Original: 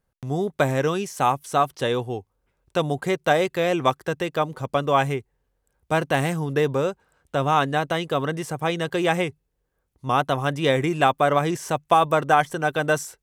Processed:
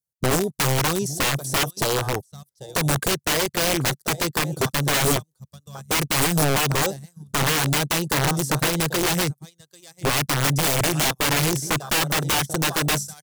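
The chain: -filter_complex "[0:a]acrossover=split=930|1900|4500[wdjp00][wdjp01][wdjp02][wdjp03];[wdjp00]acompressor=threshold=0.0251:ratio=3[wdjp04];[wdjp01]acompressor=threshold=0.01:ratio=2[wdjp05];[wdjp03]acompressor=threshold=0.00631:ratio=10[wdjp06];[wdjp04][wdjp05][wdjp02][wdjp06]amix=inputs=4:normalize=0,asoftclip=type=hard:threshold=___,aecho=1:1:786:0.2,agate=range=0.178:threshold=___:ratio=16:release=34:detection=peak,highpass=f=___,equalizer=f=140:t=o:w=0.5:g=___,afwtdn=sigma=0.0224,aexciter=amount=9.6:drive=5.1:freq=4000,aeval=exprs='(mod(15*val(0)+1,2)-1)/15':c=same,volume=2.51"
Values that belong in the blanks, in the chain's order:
0.0891, 0.00447, 53, 9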